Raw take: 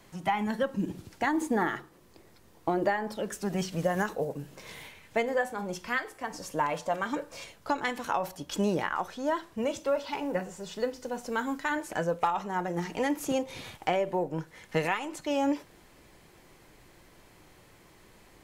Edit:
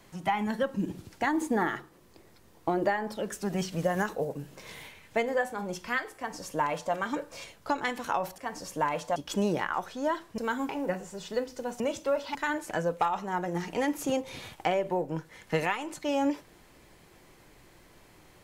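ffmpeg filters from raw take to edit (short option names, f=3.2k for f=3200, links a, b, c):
-filter_complex "[0:a]asplit=7[a][b][c][d][e][f][g];[a]atrim=end=8.382[h];[b]atrim=start=6.158:end=6.942[i];[c]atrim=start=8.378:end=9.602[j];[d]atrim=start=11.258:end=11.572[k];[e]atrim=start=10.148:end=11.262[l];[f]atrim=start=9.598:end=10.152[m];[g]atrim=start=11.568[n];[h][i]acrossfade=d=0.004:c1=hsin:c2=hsin[o];[o][j]acrossfade=d=0.004:c1=hsin:c2=hsin[p];[p][k]acrossfade=d=0.004:c1=hsin:c2=hsin[q];[q][l]acrossfade=d=0.004:c1=hsin:c2=hsin[r];[r][m]acrossfade=d=0.004:c1=hsin:c2=hsin[s];[s][n]acrossfade=d=0.004:c1=hsin:c2=hsin"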